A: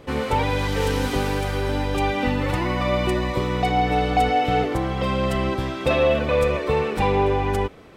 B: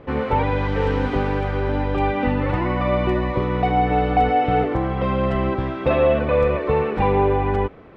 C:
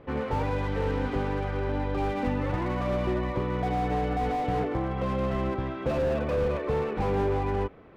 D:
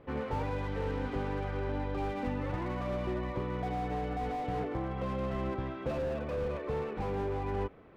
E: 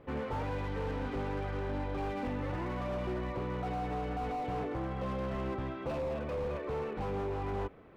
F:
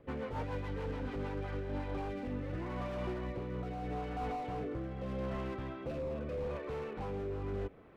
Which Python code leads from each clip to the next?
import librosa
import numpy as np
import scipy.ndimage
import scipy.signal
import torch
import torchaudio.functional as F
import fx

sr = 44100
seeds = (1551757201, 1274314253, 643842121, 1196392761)

y1 = scipy.signal.sosfilt(scipy.signal.butter(2, 2000.0, 'lowpass', fs=sr, output='sos'), x)
y1 = y1 * librosa.db_to_amplitude(2.0)
y2 = fx.slew_limit(y1, sr, full_power_hz=71.0)
y2 = y2 * librosa.db_to_amplitude(-7.0)
y3 = fx.rider(y2, sr, range_db=10, speed_s=0.5)
y3 = y3 * librosa.db_to_amplitude(-6.5)
y4 = np.clip(y3, -10.0 ** (-31.0 / 20.0), 10.0 ** (-31.0 / 20.0))
y5 = fx.rotary_switch(y4, sr, hz=7.0, then_hz=0.8, switch_at_s=1.01)
y5 = y5 * librosa.db_to_amplitude(-1.0)